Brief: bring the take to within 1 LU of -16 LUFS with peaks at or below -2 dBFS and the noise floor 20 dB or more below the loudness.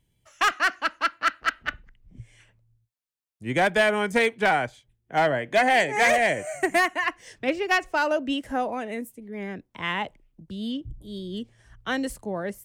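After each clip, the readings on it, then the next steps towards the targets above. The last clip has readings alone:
clipped 0.6%; flat tops at -14.5 dBFS; loudness -25.0 LUFS; peak -14.5 dBFS; loudness target -16.0 LUFS
-> clip repair -14.5 dBFS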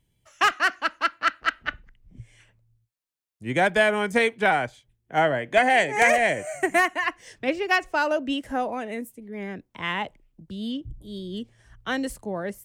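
clipped 0.0%; loudness -24.0 LUFS; peak -5.5 dBFS; loudness target -16.0 LUFS
-> gain +8 dB; limiter -2 dBFS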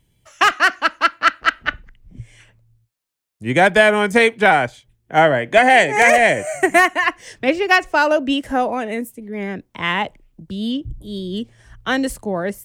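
loudness -16.5 LUFS; peak -2.0 dBFS; noise floor -67 dBFS

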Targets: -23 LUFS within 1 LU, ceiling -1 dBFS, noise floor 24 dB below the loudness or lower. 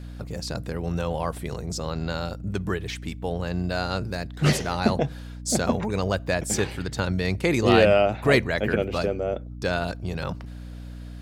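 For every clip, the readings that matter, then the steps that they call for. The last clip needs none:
hum 60 Hz; harmonics up to 300 Hz; hum level -36 dBFS; loudness -25.5 LUFS; peak -6.0 dBFS; loudness target -23.0 LUFS
-> de-hum 60 Hz, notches 5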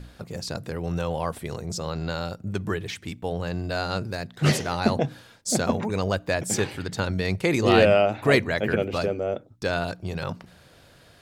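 hum none; loudness -26.0 LUFS; peak -5.0 dBFS; loudness target -23.0 LUFS
-> gain +3 dB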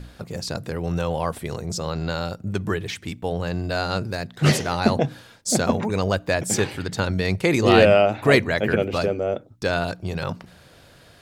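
loudness -23.0 LUFS; peak -2.0 dBFS; noise floor -51 dBFS

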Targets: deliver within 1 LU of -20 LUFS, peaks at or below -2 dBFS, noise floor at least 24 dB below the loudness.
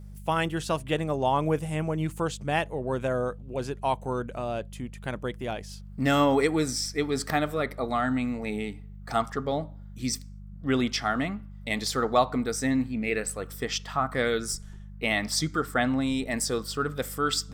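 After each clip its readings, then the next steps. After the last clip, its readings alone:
hum 50 Hz; harmonics up to 200 Hz; hum level -41 dBFS; loudness -28.5 LUFS; peak -9.5 dBFS; loudness target -20.0 LUFS
-> de-hum 50 Hz, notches 4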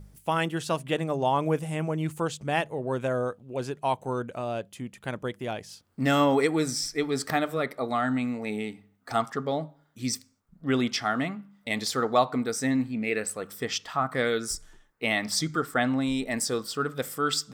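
hum none; loudness -28.5 LUFS; peak -9.5 dBFS; loudness target -20.0 LUFS
-> gain +8.5 dB; limiter -2 dBFS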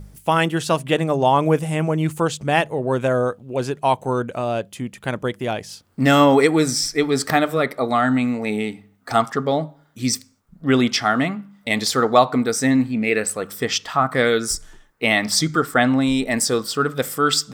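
loudness -20.0 LUFS; peak -2.0 dBFS; noise floor -55 dBFS

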